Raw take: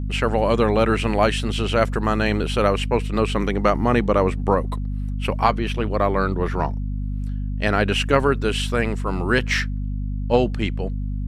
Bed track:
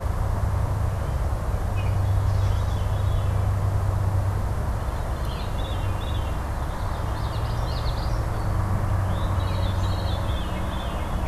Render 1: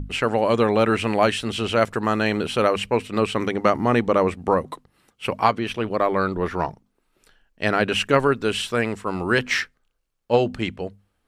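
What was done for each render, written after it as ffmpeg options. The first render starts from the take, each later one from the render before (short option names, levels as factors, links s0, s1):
-af "bandreject=f=50:t=h:w=6,bandreject=f=100:t=h:w=6,bandreject=f=150:t=h:w=6,bandreject=f=200:t=h:w=6,bandreject=f=250:t=h:w=6"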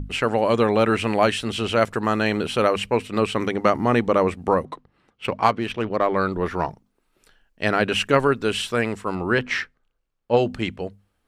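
-filter_complex "[0:a]asettb=1/sr,asplit=3[s0][s1][s2];[s0]atrim=end=4.654[s3];[s1]atrim=start=4.65:end=6.16,asetpts=PTS-STARTPTS,afade=t=in:d=0.004:c=qsin,afade=t=out:st=1.506:d=0.004:c=qsin,adynamicsmooth=sensitivity=3.5:basefreq=3700[s4];[s2]atrim=start=6.156[s5];[s3][s4]acrossfade=d=0.004:c1=hsin:c2=qsin[s6];[s6][s5]acrossfade=d=0.004:c1=qsin:c2=hsin,asettb=1/sr,asplit=3[s7][s8][s9];[s7]atrim=end=9.154[s10];[s8]atrim=start=9.15:end=10.37,asetpts=PTS-STARTPTS,afade=t=in:d=0.004:c=qsin,afade=t=out:st=1.216:d=0.004:c=qsin,lowpass=f=2600:p=1[s11];[s9]atrim=start=10.366[s12];[s10][s11]acrossfade=d=0.004:c1=hsin:c2=qsin[s13];[s13][s12]acrossfade=d=0.004:c1=qsin:c2=hsin"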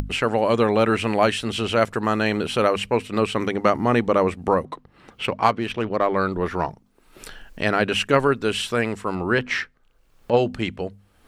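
-af "acompressor=mode=upward:threshold=0.0794:ratio=2.5"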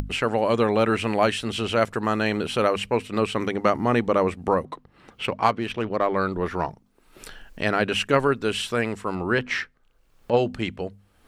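-af "volume=0.794"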